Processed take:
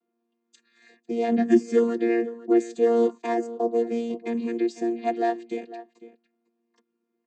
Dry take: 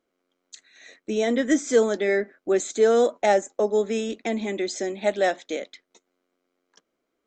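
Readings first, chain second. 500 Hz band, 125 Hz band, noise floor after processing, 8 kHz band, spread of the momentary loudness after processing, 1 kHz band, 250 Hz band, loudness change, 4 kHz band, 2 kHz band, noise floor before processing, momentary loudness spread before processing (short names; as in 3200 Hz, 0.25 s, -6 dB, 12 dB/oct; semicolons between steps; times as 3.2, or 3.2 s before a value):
-2.5 dB, n/a, -79 dBFS, under -10 dB, 12 LU, -1.0 dB, +3.5 dB, -1.0 dB, under -10 dB, -8.0 dB, -79 dBFS, 10 LU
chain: chord vocoder bare fifth, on A#3; outdoor echo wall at 86 m, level -15 dB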